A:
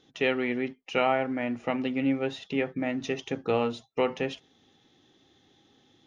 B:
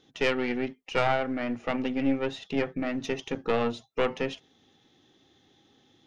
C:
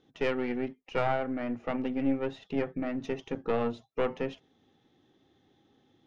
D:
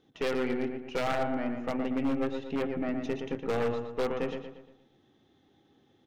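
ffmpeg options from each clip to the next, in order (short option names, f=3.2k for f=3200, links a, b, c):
-af "aeval=exprs='(tanh(8.91*val(0)+0.8)-tanh(0.8))/8.91':c=same,volume=5dB"
-af "highshelf=f=2.5k:g=-12,volume=-2dB"
-filter_complex "[0:a]asplit=2[a][b];[b]adelay=117,lowpass=f=3.5k:p=1,volume=-6dB,asplit=2[c][d];[d]adelay=117,lowpass=f=3.5k:p=1,volume=0.46,asplit=2[e][f];[f]adelay=117,lowpass=f=3.5k:p=1,volume=0.46,asplit=2[g][h];[h]adelay=117,lowpass=f=3.5k:p=1,volume=0.46,asplit=2[i][j];[j]adelay=117,lowpass=f=3.5k:p=1,volume=0.46,asplit=2[k][l];[l]adelay=117,lowpass=f=3.5k:p=1,volume=0.46[m];[c][e][g][i][k][m]amix=inputs=6:normalize=0[n];[a][n]amix=inputs=2:normalize=0,aeval=exprs='0.0891*(abs(mod(val(0)/0.0891+3,4)-2)-1)':c=same"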